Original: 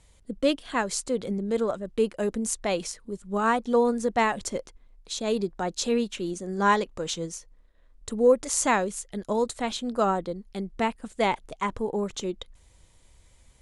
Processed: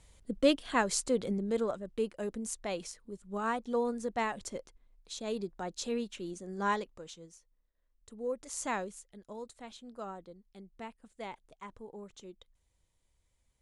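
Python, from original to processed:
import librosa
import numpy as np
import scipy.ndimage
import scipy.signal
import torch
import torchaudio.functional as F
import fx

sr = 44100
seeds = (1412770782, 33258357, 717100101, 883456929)

y = fx.gain(x, sr, db=fx.line((1.11, -2.0), (2.13, -9.5), (6.76, -9.5), (7.17, -19.0), (8.09, -19.0), (8.8, -10.5), (9.16, -18.5)))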